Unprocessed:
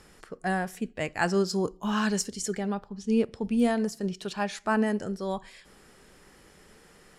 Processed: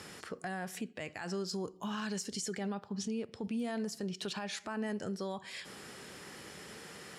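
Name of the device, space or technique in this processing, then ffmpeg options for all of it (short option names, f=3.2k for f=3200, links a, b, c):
broadcast voice chain: -af "highpass=f=84:w=0.5412,highpass=f=84:w=1.3066,deesser=0.45,acompressor=threshold=-39dB:ratio=5,equalizer=f=3.7k:t=o:w=2.1:g=4,alimiter=level_in=10.5dB:limit=-24dB:level=0:latency=1:release=35,volume=-10.5dB,volume=5.5dB"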